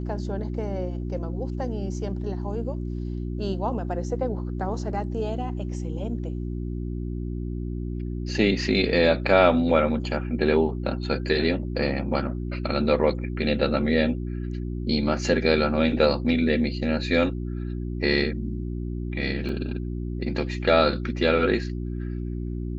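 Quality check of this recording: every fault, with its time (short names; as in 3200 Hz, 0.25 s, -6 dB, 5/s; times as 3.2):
hum 60 Hz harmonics 6 -30 dBFS
19.49 gap 3 ms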